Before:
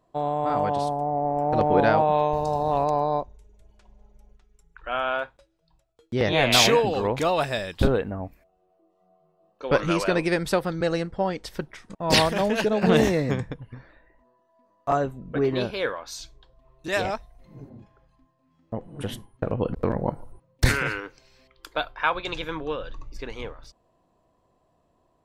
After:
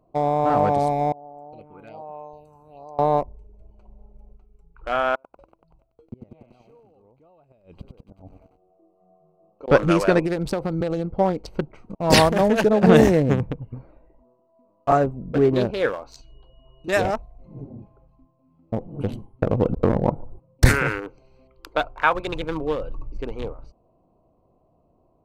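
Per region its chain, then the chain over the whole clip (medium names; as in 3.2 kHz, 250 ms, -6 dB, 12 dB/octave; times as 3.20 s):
1.12–2.99 s: pre-emphasis filter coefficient 0.97 + phase shifter stages 4, 1.2 Hz, lowest notch 630–4000 Hz
5.15–9.68 s: compression 1.5:1, threshold -50 dBFS + inverted gate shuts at -29 dBFS, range -26 dB + bit-crushed delay 95 ms, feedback 80%, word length 9-bit, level -4 dB
10.19–11.05 s: low-pass 12 kHz + compression 8:1, threshold -24 dBFS
16.20–16.87 s: compression 4:1, threshold -46 dBFS + whistle 2.9 kHz -55 dBFS
whole clip: local Wiener filter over 25 samples; band-stop 1 kHz, Q 25; dynamic bell 3.6 kHz, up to -6 dB, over -43 dBFS, Q 0.99; trim +6 dB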